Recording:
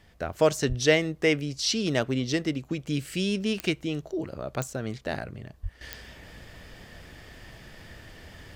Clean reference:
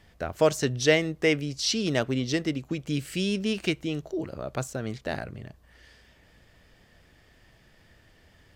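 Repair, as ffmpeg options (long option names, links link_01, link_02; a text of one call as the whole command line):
ffmpeg -i in.wav -filter_complex "[0:a]adeclick=threshold=4,asplit=3[link_01][link_02][link_03];[link_01]afade=type=out:start_time=0.68:duration=0.02[link_04];[link_02]highpass=frequency=140:width=0.5412,highpass=frequency=140:width=1.3066,afade=type=in:start_time=0.68:duration=0.02,afade=type=out:start_time=0.8:duration=0.02[link_05];[link_03]afade=type=in:start_time=0.8:duration=0.02[link_06];[link_04][link_05][link_06]amix=inputs=3:normalize=0,asplit=3[link_07][link_08][link_09];[link_07]afade=type=out:start_time=5.62:duration=0.02[link_10];[link_08]highpass=frequency=140:width=0.5412,highpass=frequency=140:width=1.3066,afade=type=in:start_time=5.62:duration=0.02,afade=type=out:start_time=5.74:duration=0.02[link_11];[link_09]afade=type=in:start_time=5.74:duration=0.02[link_12];[link_10][link_11][link_12]amix=inputs=3:normalize=0,asetnsamples=nb_out_samples=441:pad=0,asendcmd='5.81 volume volume -11.5dB',volume=0dB" out.wav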